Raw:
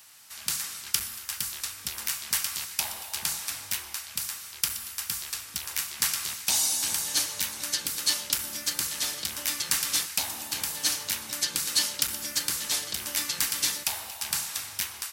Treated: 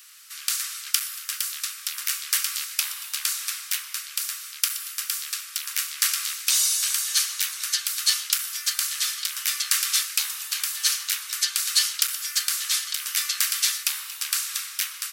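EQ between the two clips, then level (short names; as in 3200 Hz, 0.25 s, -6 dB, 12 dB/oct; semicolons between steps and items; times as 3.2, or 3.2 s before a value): elliptic high-pass 1200 Hz, stop band 60 dB; +4.5 dB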